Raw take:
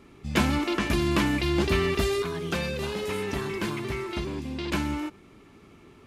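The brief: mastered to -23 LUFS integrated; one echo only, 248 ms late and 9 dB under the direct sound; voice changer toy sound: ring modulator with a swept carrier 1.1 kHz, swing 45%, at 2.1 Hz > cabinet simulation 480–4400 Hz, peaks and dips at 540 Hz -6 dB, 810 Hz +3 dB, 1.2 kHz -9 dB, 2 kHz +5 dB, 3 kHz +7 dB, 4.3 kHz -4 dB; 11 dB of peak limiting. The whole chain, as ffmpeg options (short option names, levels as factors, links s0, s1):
-af "alimiter=limit=0.0794:level=0:latency=1,aecho=1:1:248:0.355,aeval=exprs='val(0)*sin(2*PI*1100*n/s+1100*0.45/2.1*sin(2*PI*2.1*n/s))':c=same,highpass=480,equalizer=f=540:t=q:w=4:g=-6,equalizer=f=810:t=q:w=4:g=3,equalizer=f=1200:t=q:w=4:g=-9,equalizer=f=2000:t=q:w=4:g=5,equalizer=f=3000:t=q:w=4:g=7,equalizer=f=4300:t=q:w=4:g=-4,lowpass=f=4400:w=0.5412,lowpass=f=4400:w=1.3066,volume=3.35"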